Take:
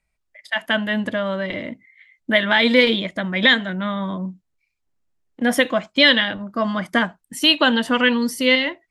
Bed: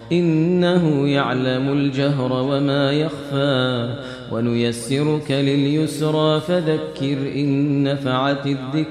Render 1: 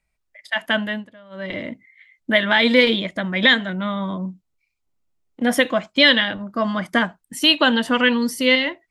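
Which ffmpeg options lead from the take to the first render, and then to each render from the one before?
-filter_complex "[0:a]asettb=1/sr,asplit=3[a][b][c];[a]atrim=end=3.704[d];[b]atrim=start=3.7:end=5.47,asetpts=PTS-STARTPTS,afade=t=in:d=0.004:c=qsin,afade=t=out:st=1.766:d=0.004:c=qsin,bandreject=f=1.7k:w=6[e];[c]atrim=start=5.466[f];[d][e]acrossfade=d=0.004:c1=hsin:c2=qsin[g];[g][f]acrossfade=d=0.004:c1=qsin:c2=hsin,asplit=3[h][i][j];[h]atrim=end=1.07,asetpts=PTS-STARTPTS,afade=t=out:st=0.73:d=0.34:c=qsin:silence=0.0749894[k];[i]atrim=start=1.07:end=1.3,asetpts=PTS-STARTPTS,volume=-22.5dB[l];[j]atrim=start=1.3,asetpts=PTS-STARTPTS,afade=t=in:d=0.34:c=qsin:silence=0.0749894[m];[k][l][m]concat=n=3:v=0:a=1"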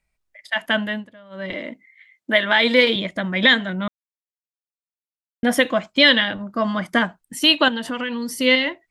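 -filter_complex "[0:a]asettb=1/sr,asplit=3[a][b][c];[a]atrim=end=1.534[d];[b]atrim=start=1.53:end=2.96,asetpts=PTS-STARTPTS,afade=t=in:d=0.004:c=qsin,afade=t=out:st=1.426:d=0.004:c=qsin,highpass=260[e];[c]atrim=start=2.956[f];[d][e]acrossfade=d=0.004:c1=hsin:c2=qsin[g];[g][f]acrossfade=d=0.004:c1=qsin:c2=hsin,asettb=1/sr,asplit=3[h][i][j];[h]atrim=end=7.684[k];[i]atrim=start=7.68:end=8.4,asetpts=PTS-STARTPTS,afade=t=in:d=0.004:c=qsin,afade=t=out:st=0.716:d=0.004:c=qsin,acompressor=threshold=-23dB:ratio=6:attack=3.2:release=140:knee=1:detection=peak[l];[j]atrim=start=8.396[m];[k][l]acrossfade=d=0.004:c1=hsin:c2=qsin[n];[n][m]acrossfade=d=0.004:c1=qsin:c2=hsin,asplit=3[o][p][q];[o]atrim=end=3.88,asetpts=PTS-STARTPTS,afade=t=out:st=3.876:d=0.004:c=hsin[r];[p]atrim=start=3.88:end=5.43,asetpts=PTS-STARTPTS,volume=0[s];[q]atrim=start=5.43,asetpts=PTS-STARTPTS,afade=t=in:d=0.004:c=hsin[t];[r][s][t]concat=n=3:v=0:a=1"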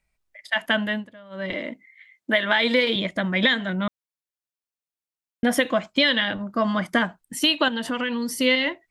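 -af "acompressor=threshold=-16dB:ratio=6"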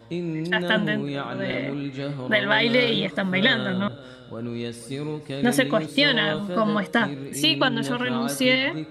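-filter_complex "[1:a]volume=-11.5dB[a];[0:a][a]amix=inputs=2:normalize=0"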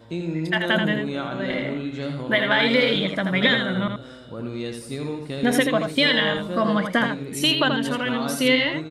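-af "aecho=1:1:82:0.501"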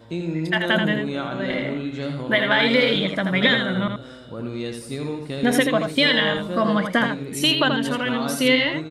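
-af "volume=1dB"

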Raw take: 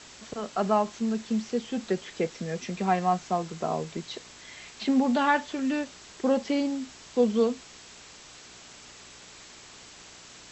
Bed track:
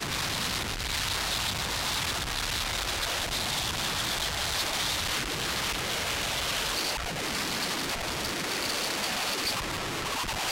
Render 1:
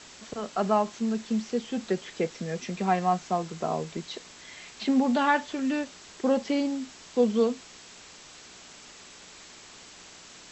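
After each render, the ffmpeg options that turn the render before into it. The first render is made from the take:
-af "bandreject=f=60:t=h:w=4,bandreject=f=120:t=h:w=4"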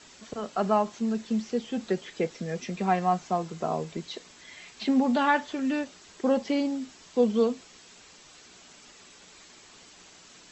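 -af "afftdn=nr=6:nf=-49"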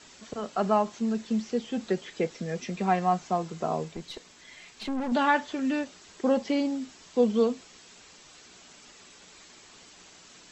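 -filter_complex "[0:a]asettb=1/sr,asplit=3[a][b][c];[a]atrim=end=3.884[d];[b]atrim=start=3.88:end=5.12,asetpts=PTS-STARTPTS,afade=t=in:d=0.004:c=qsin,afade=t=out:st=1.236:d=0.004:c=qsin,aeval=exprs='(tanh(25.1*val(0)+0.5)-tanh(0.5))/25.1':c=same[e];[c]atrim=start=5.116[f];[d][e]acrossfade=d=0.004:c1=hsin:c2=qsin[g];[g][f]acrossfade=d=0.004:c1=qsin:c2=hsin"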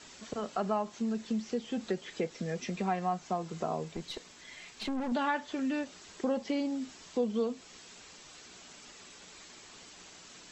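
-af "acompressor=threshold=-33dB:ratio=2"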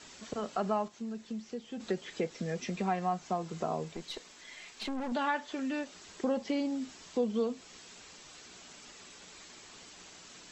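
-filter_complex "[0:a]asettb=1/sr,asplit=3[a][b][c];[a]atrim=end=3.934[d];[b]atrim=start=3.93:end=5.95,asetpts=PTS-STARTPTS,afade=t=in:d=0.004:c=qsin,afade=t=out:st=2.016:d=0.004:c=qsin,equalizer=f=94:w=0.57:g=-8[e];[c]atrim=start=5.946[f];[d][e]acrossfade=d=0.004:c1=hsin:c2=qsin[g];[g][f]acrossfade=d=0.004:c1=qsin:c2=hsin,asplit=3[h][i][j];[h]atrim=end=0.882[k];[i]atrim=start=0.878:end=1.802,asetpts=PTS-STARTPTS,volume=-6.5dB[l];[j]atrim=start=1.798[m];[k][l]acrossfade=d=0.004:c1=hsin:c2=hsin[n];[n][m]acrossfade=d=0.004:c1=hsin:c2=hsin"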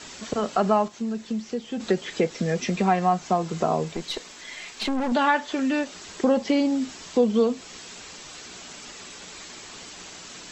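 -af "volume=10.5dB"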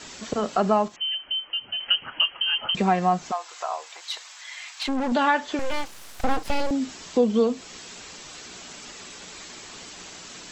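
-filter_complex "[0:a]asettb=1/sr,asplit=3[a][b][c];[a]atrim=end=0.964[d];[b]atrim=start=0.96:end=2.75,asetpts=PTS-STARTPTS,afade=t=in:d=0.004:c=qsin,afade=t=out:st=1.786:d=0.004:c=qsin,lowpass=f=2.8k:t=q:w=0.5098,lowpass=f=2.8k:t=q:w=0.6013,lowpass=f=2.8k:t=q:w=0.9,lowpass=f=2.8k:t=q:w=2.563,afreqshift=-3300[e];[c]atrim=start=2.746[f];[d][e]acrossfade=d=0.004:c1=hsin:c2=qsin[g];[g][f]acrossfade=d=0.004:c1=qsin:c2=hsin,asplit=3[h][i][j];[h]afade=t=out:st=3.3:d=0.02[k];[i]highpass=f=810:w=0.5412,highpass=f=810:w=1.3066,afade=t=in:st=3.3:d=0.02,afade=t=out:st=4.87:d=0.02[l];[j]afade=t=in:st=4.87:d=0.02[m];[k][l][m]amix=inputs=3:normalize=0,asettb=1/sr,asplit=3[n][o][p];[n]atrim=end=5.594[q];[o]atrim=start=5.59:end=6.71,asetpts=PTS-STARTPTS,afade=t=in:d=0.004:c=qsin,afade=t=out:st=1.116:d=0.004:c=qsin,aeval=exprs='abs(val(0))':c=same[r];[p]atrim=start=6.706[s];[q][r]acrossfade=d=0.004:c1=hsin:c2=qsin[t];[t][s]acrossfade=d=0.004:c1=qsin:c2=hsin"

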